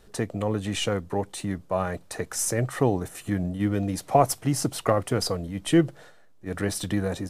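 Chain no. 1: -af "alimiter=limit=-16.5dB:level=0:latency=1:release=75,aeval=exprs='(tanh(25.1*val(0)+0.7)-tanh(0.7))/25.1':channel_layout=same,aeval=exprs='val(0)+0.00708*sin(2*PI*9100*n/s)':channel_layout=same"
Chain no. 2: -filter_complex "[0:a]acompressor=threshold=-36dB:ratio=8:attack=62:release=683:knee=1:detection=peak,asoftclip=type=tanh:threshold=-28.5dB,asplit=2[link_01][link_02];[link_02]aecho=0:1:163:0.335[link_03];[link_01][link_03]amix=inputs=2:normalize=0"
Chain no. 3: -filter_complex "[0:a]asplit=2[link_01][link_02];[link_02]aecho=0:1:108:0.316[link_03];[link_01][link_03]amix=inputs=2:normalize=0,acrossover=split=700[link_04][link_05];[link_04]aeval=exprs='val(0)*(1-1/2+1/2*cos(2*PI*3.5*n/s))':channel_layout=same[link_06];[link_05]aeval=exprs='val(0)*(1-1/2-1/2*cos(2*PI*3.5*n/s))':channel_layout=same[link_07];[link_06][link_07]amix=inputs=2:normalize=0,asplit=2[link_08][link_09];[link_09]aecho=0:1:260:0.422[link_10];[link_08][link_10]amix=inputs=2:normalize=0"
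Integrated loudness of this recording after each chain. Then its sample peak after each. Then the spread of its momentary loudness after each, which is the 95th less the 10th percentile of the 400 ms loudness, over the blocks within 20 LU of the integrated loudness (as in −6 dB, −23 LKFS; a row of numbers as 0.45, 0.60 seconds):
−34.5, −39.5, −30.0 LKFS; −23.0, −27.0, −10.5 dBFS; 5, 4, 8 LU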